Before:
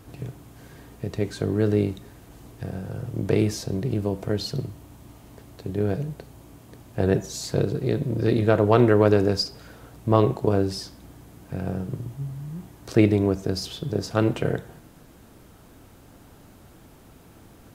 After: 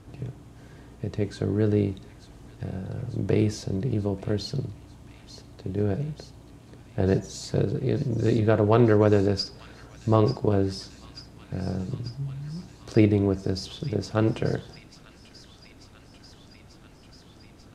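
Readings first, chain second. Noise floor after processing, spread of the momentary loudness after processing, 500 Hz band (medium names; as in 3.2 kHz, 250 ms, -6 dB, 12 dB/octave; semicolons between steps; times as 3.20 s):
-51 dBFS, 18 LU, -2.0 dB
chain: low-pass 8.2 kHz 12 dB/octave; bass shelf 350 Hz +3.5 dB; on a send: feedback echo behind a high-pass 890 ms, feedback 77%, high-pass 2.5 kHz, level -12 dB; on the sum: trim -3.5 dB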